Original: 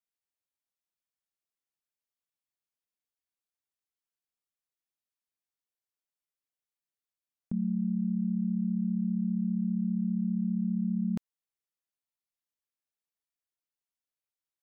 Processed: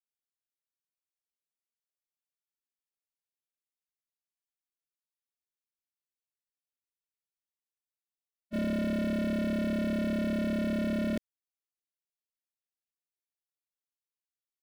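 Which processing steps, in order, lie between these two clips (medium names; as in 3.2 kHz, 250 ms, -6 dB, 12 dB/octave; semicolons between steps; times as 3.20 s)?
waveshaping leveller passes 5; static phaser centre 380 Hz, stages 4; spectral freeze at 5.94 s, 2.60 s; trim +2.5 dB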